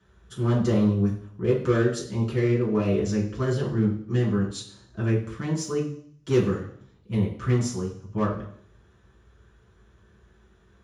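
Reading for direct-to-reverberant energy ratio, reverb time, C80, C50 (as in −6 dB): −8.0 dB, 0.60 s, 11.0 dB, 7.5 dB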